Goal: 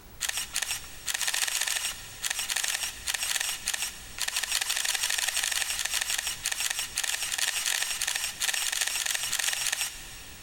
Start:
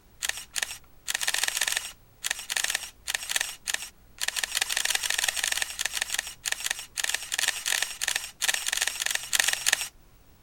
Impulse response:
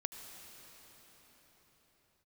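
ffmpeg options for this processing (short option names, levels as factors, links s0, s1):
-filter_complex "[0:a]acompressor=threshold=0.0355:ratio=6,alimiter=limit=0.0708:level=0:latency=1:release=29,asplit=2[s0][s1];[1:a]atrim=start_sample=2205,lowshelf=f=450:g=-12[s2];[s1][s2]afir=irnorm=-1:irlink=0,volume=0.944[s3];[s0][s3]amix=inputs=2:normalize=0,volume=1.88"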